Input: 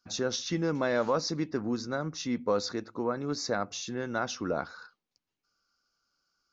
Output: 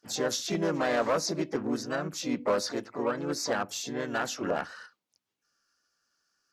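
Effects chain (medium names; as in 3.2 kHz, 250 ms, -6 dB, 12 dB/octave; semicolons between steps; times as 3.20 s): harmony voices +3 st -3 dB, +12 st -14 dB; one-sided clip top -20.5 dBFS; bass shelf 96 Hz -9.5 dB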